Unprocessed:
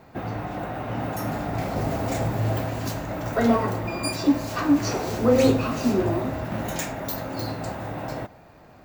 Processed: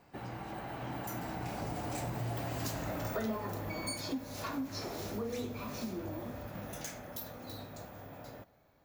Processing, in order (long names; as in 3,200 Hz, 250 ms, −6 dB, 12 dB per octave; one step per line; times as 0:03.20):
source passing by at 0:02.84, 28 m/s, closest 13 metres
high-shelf EQ 3,400 Hz +6.5 dB
downward compressor 4 to 1, threshold −40 dBFS, peak gain reduction 18.5 dB
level +3.5 dB